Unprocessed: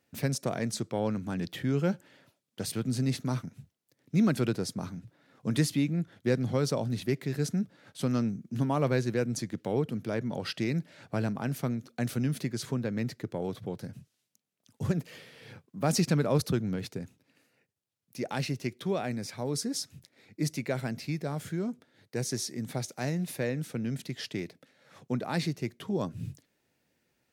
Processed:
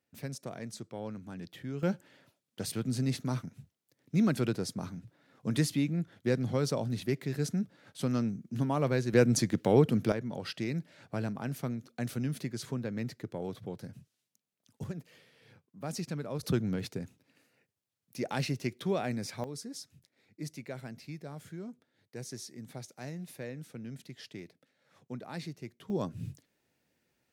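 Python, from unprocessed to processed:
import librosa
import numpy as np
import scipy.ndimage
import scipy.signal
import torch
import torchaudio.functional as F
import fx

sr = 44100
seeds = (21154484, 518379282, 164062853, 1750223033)

y = fx.gain(x, sr, db=fx.steps((0.0, -10.0), (1.83, -2.0), (9.13, 6.0), (10.12, -4.0), (14.84, -11.0), (16.43, -0.5), (19.44, -10.0), (25.9, -2.0)))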